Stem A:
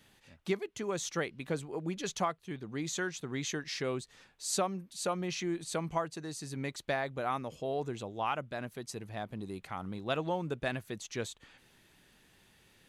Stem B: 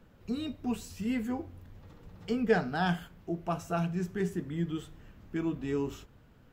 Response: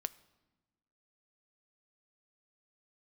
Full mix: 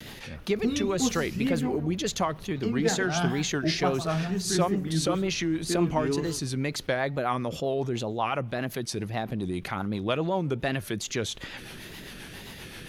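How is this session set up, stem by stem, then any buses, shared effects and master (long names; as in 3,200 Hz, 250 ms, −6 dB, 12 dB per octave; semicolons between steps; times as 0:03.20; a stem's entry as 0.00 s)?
+1.0 dB, 0.00 s, send −4.5 dB, no echo send, rotating-speaker cabinet horn 7.5 Hz; envelope flattener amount 50%
+3.0 dB, 0.35 s, no send, echo send −12.5 dB, speech leveller 0.5 s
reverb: on, RT60 1.2 s, pre-delay 6 ms
echo: single-tap delay 158 ms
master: parametric band 7,800 Hz −8.5 dB 0.27 octaves; tape wow and flutter 110 cents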